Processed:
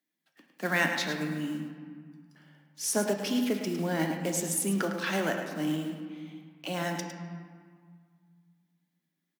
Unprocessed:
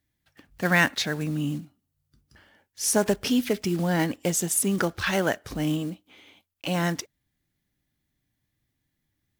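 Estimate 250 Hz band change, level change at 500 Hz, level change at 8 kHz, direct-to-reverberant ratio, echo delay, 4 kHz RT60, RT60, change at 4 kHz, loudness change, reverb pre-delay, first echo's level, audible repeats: -4.0 dB, -4.5 dB, -5.5 dB, 3.0 dB, 106 ms, 1.1 s, 1.9 s, -5.0 dB, -5.0 dB, 3 ms, -9.0 dB, 1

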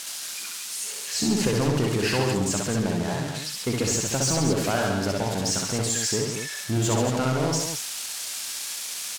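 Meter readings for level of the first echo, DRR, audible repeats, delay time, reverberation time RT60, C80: -3.0 dB, no reverb, 3, 63 ms, no reverb, no reverb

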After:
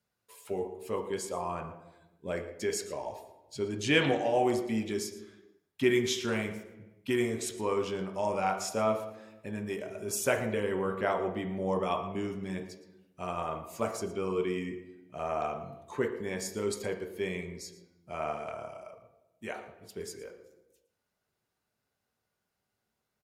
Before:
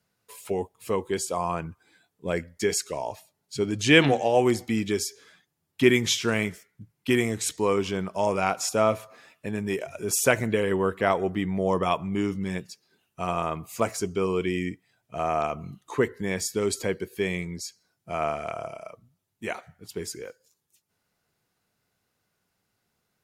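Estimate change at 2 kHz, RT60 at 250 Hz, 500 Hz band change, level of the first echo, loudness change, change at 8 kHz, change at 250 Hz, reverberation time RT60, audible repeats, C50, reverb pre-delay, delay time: -7.5 dB, 1.3 s, -5.5 dB, -16.0 dB, -6.5 dB, -8.5 dB, -6.5 dB, 1.0 s, 1, 8.0 dB, 3 ms, 115 ms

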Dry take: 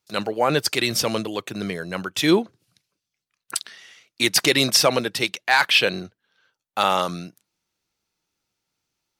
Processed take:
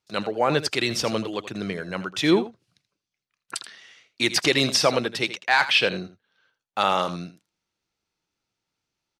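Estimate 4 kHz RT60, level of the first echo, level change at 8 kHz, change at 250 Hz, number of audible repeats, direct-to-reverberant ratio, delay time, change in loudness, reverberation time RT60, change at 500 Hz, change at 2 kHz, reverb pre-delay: no reverb, -13.5 dB, -6.0 dB, -1.5 dB, 1, no reverb, 81 ms, -2.0 dB, no reverb, -1.5 dB, -2.0 dB, no reverb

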